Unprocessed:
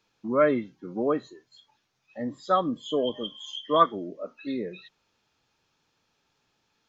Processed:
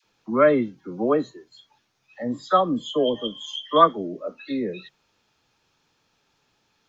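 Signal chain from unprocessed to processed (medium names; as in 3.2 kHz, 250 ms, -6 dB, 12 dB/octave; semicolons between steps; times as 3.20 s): phase dispersion lows, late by 43 ms, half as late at 810 Hz; trim +4.5 dB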